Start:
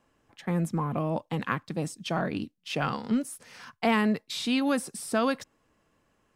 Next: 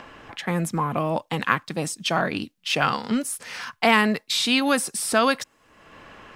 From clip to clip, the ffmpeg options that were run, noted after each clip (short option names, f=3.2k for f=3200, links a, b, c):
-filter_complex "[0:a]tiltshelf=f=640:g=-5,acrossover=split=4100[a][b];[a]acompressor=mode=upward:threshold=-35dB:ratio=2.5[c];[c][b]amix=inputs=2:normalize=0,volume=6dB"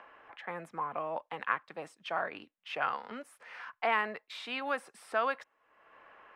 -filter_complex "[0:a]acrossover=split=450 2500:gain=0.112 1 0.0794[a][b][c];[a][b][c]amix=inputs=3:normalize=0,volume=-8.5dB"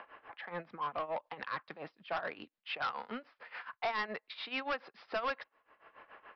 -af "tremolo=f=7:d=0.85,aresample=11025,asoftclip=type=tanh:threshold=-34dB,aresample=44100,volume=4.5dB"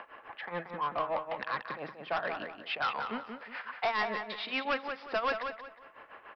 -filter_complex "[0:a]asplit=2[a][b];[b]adelay=181,lowpass=f=3.8k:p=1,volume=-6dB,asplit=2[c][d];[d]adelay=181,lowpass=f=3.8k:p=1,volume=0.33,asplit=2[e][f];[f]adelay=181,lowpass=f=3.8k:p=1,volume=0.33,asplit=2[g][h];[h]adelay=181,lowpass=f=3.8k:p=1,volume=0.33[i];[a][c][e][g][i]amix=inputs=5:normalize=0,volume=4dB"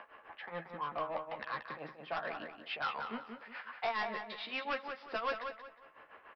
-filter_complex "[0:a]asplit=2[a][b];[b]adelay=13,volume=-6.5dB[c];[a][c]amix=inputs=2:normalize=0,volume=-6dB"